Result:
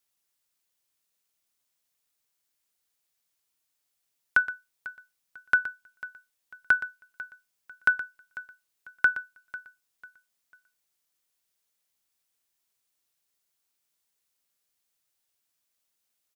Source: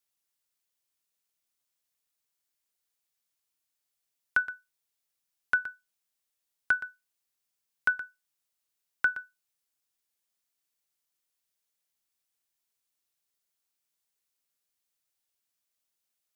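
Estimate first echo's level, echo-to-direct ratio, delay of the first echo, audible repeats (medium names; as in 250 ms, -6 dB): -17.5 dB, -17.0 dB, 496 ms, 2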